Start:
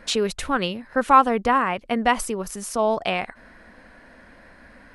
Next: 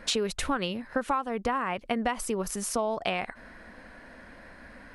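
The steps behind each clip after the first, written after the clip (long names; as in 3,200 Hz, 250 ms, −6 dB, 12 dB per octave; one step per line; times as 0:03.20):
downward compressor 16 to 1, threshold −24 dBFS, peak gain reduction 17 dB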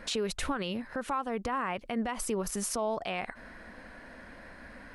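brickwall limiter −23 dBFS, peak gain reduction 9.5 dB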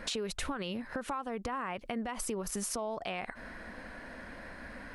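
downward compressor 4 to 1, threshold −36 dBFS, peak gain reduction 8 dB
level +2.5 dB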